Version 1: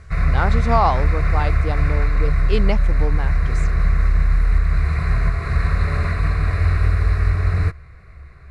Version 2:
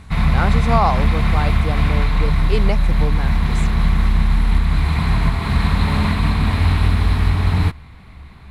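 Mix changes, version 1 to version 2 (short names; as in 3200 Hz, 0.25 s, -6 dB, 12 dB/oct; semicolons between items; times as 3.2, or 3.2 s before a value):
background: remove fixed phaser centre 880 Hz, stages 6; master: remove LPF 6800 Hz 12 dB/oct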